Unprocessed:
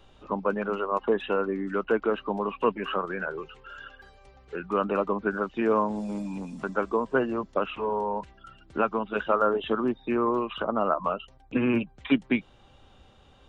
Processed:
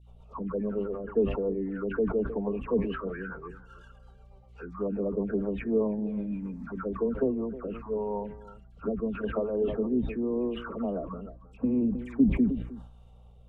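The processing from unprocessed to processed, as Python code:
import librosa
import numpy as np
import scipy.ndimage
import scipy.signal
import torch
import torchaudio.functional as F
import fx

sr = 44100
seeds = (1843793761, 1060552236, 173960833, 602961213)

y = scipy.ndimage.median_filter(x, 9, mode='constant')
y = fx.env_lowpass_down(y, sr, base_hz=640.0, full_db=-22.5)
y = fx.high_shelf(y, sr, hz=2500.0, db=-8.0)
y = y + 0.35 * np.pad(y, (int(4.4 * sr / 1000.0), 0))[:len(y)]
y = fx.dispersion(y, sr, late='lows', ms=84.0, hz=1200.0)
y = fx.rotary_switch(y, sr, hz=8.0, then_hz=0.85, switch_at_s=6.45)
y = fx.add_hum(y, sr, base_hz=60, snr_db=22)
y = fx.env_phaser(y, sr, low_hz=250.0, high_hz=1500.0, full_db=-25.5)
y = y + 10.0 ** (-18.0 / 20.0) * np.pad(y, (int(313 * sr / 1000.0), 0))[:len(y)]
y = fx.sustainer(y, sr, db_per_s=76.0)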